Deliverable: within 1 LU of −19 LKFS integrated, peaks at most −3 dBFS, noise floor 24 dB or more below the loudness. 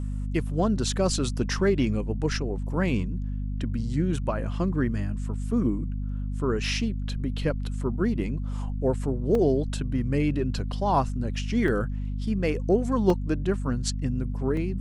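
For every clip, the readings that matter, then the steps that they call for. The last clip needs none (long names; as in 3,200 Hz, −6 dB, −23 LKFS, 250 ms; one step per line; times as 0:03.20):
number of dropouts 4; longest dropout 2.3 ms; mains hum 50 Hz; hum harmonics up to 250 Hz; level of the hum −27 dBFS; integrated loudness −27.0 LKFS; sample peak −9.5 dBFS; target loudness −19.0 LKFS
→ repair the gap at 0:09.35/0:11.68/0:13.10/0:14.57, 2.3 ms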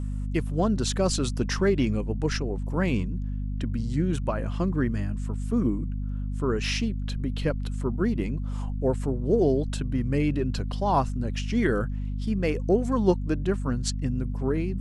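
number of dropouts 0; mains hum 50 Hz; hum harmonics up to 250 Hz; level of the hum −27 dBFS
→ hum removal 50 Hz, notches 5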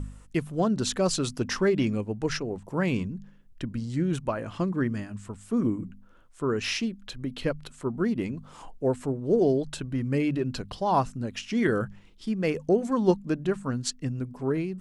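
mains hum none found; integrated loudness −28.5 LKFS; sample peak −10.0 dBFS; target loudness −19.0 LKFS
→ level +9.5 dB
brickwall limiter −3 dBFS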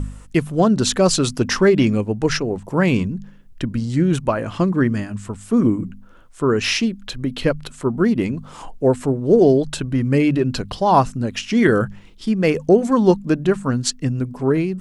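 integrated loudness −19.0 LKFS; sample peak −3.0 dBFS; background noise floor −44 dBFS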